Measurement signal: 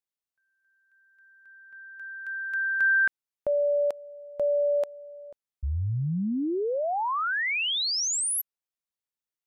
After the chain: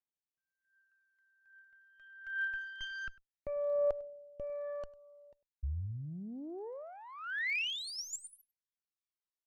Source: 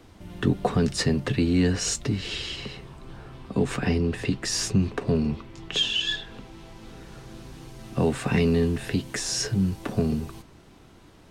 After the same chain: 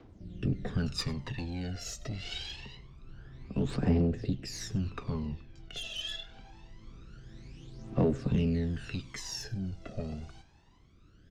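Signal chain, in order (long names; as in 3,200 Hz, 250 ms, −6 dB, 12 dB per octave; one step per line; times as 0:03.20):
low-pass filter 6,700 Hz 24 dB per octave
tube saturation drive 19 dB, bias 0.5
rotating-speaker cabinet horn 0.75 Hz
phase shifter 0.25 Hz, delay 1.6 ms, feedback 71%
single-tap delay 100 ms −22 dB
level −8 dB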